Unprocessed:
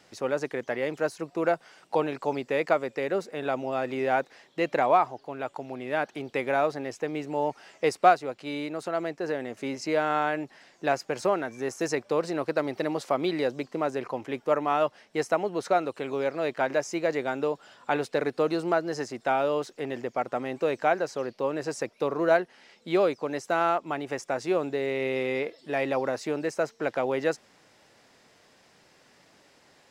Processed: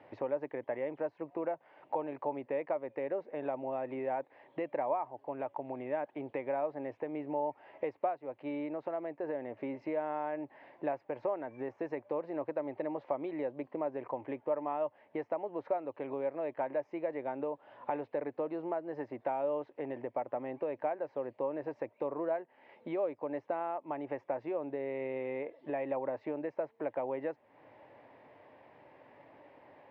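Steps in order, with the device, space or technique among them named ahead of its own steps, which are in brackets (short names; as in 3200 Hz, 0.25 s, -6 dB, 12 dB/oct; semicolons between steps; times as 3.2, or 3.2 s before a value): bass amplifier (compressor 3:1, threshold -41 dBFS, peak gain reduction 20 dB; speaker cabinet 75–2300 Hz, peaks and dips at 110 Hz +4 dB, 190 Hz -8 dB, 290 Hz +5 dB, 580 Hz +8 dB, 910 Hz +8 dB, 1400 Hz -8 dB)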